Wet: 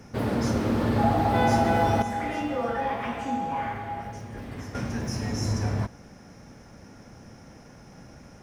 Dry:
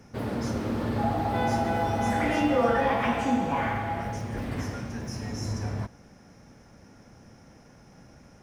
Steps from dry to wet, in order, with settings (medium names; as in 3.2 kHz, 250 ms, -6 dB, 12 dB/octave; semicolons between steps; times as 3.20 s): 2.02–4.75 s: feedback comb 410 Hz, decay 0.68 s, mix 70%; trim +4.5 dB